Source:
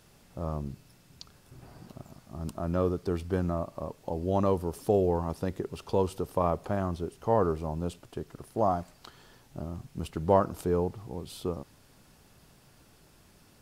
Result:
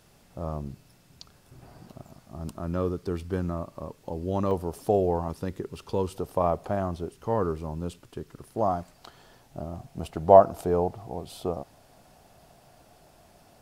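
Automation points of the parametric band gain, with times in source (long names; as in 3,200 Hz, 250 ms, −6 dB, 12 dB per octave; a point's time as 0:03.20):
parametric band 690 Hz 0.56 octaves
+3 dB
from 0:02.53 −4 dB
from 0:04.51 +6 dB
from 0:05.28 −5.5 dB
from 0:06.15 +5 dB
from 0:07.12 −5 dB
from 0:08.46 +1 dB
from 0:08.96 +8 dB
from 0:09.73 +14.5 dB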